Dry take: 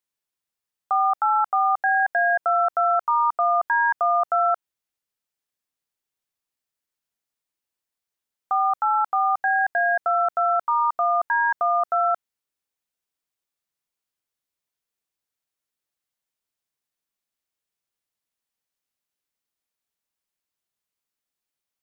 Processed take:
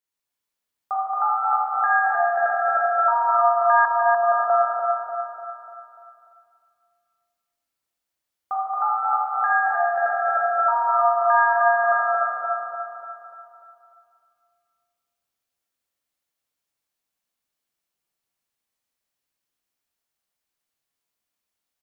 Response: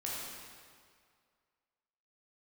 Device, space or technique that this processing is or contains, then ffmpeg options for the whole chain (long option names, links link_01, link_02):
stairwell: -filter_complex "[1:a]atrim=start_sample=2205[link_01];[0:a][link_01]afir=irnorm=-1:irlink=0,asettb=1/sr,asplit=3[link_02][link_03][link_04];[link_02]atrim=end=3.854[link_05];[link_03]atrim=start=3.85:end=4.5,asetpts=PTS-STARTPTS,afade=type=in:duration=0.004:curve=qsin,afade=type=out:start_time=0.646:duration=0.004:curve=qsin,lowpass=frequency=1200:width=0.5412,lowpass=frequency=1200:width=1.3066[link_06];[link_04]atrim=start=4.496[link_07];[link_05][link_06]acrossfade=duration=0.004:curve1=hsin:curve2=qsin[link_08];[link_08][link_07]acrossfade=duration=0.004:curve1=qsin:curve2=hsin,aecho=1:1:295|590|885|1180|1475|1770:0.562|0.276|0.135|0.0662|0.0324|0.0159"